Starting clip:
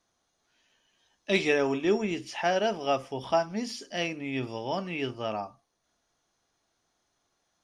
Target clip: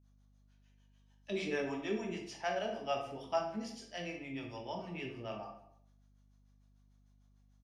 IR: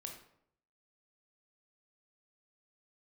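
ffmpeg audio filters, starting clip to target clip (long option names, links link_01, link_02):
-filter_complex "[0:a]acrossover=split=450[link_01][link_02];[link_01]aeval=exprs='val(0)*(1-1/2+1/2*cos(2*PI*6.7*n/s))':channel_layout=same[link_03];[link_02]aeval=exprs='val(0)*(1-1/2-1/2*cos(2*PI*6.7*n/s))':channel_layout=same[link_04];[link_03][link_04]amix=inputs=2:normalize=0,asplit=2[link_05][link_06];[link_06]adelay=190,highpass=300,lowpass=3400,asoftclip=type=hard:threshold=-24.5dB,volume=-20dB[link_07];[link_05][link_07]amix=inputs=2:normalize=0[link_08];[1:a]atrim=start_sample=2205[link_09];[link_08][link_09]afir=irnorm=-1:irlink=0,aeval=exprs='val(0)+0.000708*(sin(2*PI*50*n/s)+sin(2*PI*2*50*n/s)/2+sin(2*PI*3*50*n/s)/3+sin(2*PI*4*50*n/s)/4+sin(2*PI*5*50*n/s)/5)':channel_layout=same,volume=-2dB"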